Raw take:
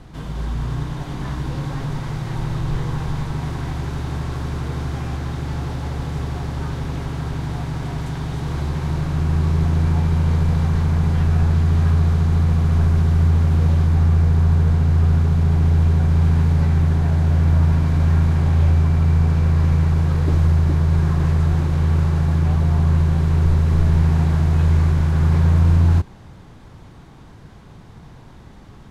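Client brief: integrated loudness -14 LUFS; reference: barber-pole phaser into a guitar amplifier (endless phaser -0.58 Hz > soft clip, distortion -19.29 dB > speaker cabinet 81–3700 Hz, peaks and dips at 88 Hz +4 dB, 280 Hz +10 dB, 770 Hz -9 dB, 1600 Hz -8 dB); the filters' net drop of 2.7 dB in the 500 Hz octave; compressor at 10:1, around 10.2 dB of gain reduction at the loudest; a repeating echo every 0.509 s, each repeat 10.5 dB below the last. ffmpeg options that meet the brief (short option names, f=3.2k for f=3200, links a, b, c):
-filter_complex "[0:a]equalizer=f=500:t=o:g=-4.5,acompressor=threshold=-22dB:ratio=10,aecho=1:1:509|1018|1527:0.299|0.0896|0.0269,asplit=2[a][b];[b]afreqshift=-0.58[c];[a][c]amix=inputs=2:normalize=1,asoftclip=threshold=-21dB,highpass=81,equalizer=f=88:t=q:w=4:g=4,equalizer=f=280:t=q:w=4:g=10,equalizer=f=770:t=q:w=4:g=-9,equalizer=f=1.6k:t=q:w=4:g=-8,lowpass=f=3.7k:w=0.5412,lowpass=f=3.7k:w=1.3066,volume=17dB"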